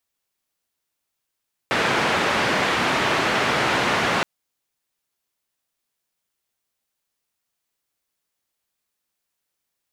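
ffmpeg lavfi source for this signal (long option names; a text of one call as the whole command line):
ffmpeg -f lavfi -i "anoisesrc=color=white:duration=2.52:sample_rate=44100:seed=1,highpass=frequency=120,lowpass=frequency=2000,volume=-5.9dB" out.wav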